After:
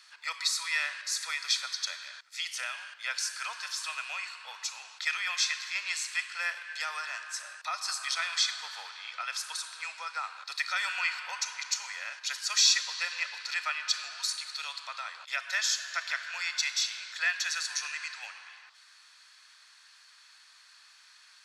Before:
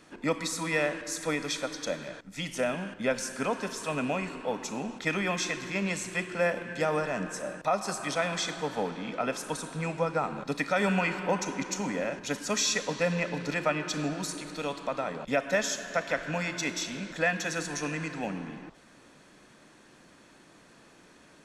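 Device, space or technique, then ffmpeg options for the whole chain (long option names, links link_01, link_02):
headphones lying on a table: -af "highpass=frequency=1200:width=0.5412,highpass=frequency=1200:width=1.3066,equalizer=frequency=4500:width_type=o:width=0.58:gain=11"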